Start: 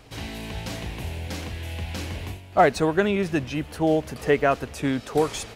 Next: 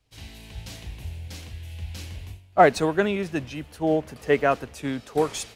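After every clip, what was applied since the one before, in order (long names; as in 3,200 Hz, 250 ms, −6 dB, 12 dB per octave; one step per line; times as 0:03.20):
multiband upward and downward expander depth 70%
level −2.5 dB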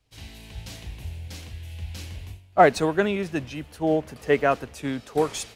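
no processing that can be heard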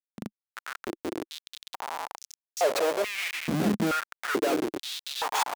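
feedback echo with a long and a short gap by turns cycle 1,030 ms, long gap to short 1.5 to 1, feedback 41%, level −17 dB
comparator with hysteresis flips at −31 dBFS
high-pass on a step sequencer 2.3 Hz 210–5,900 Hz
level −2 dB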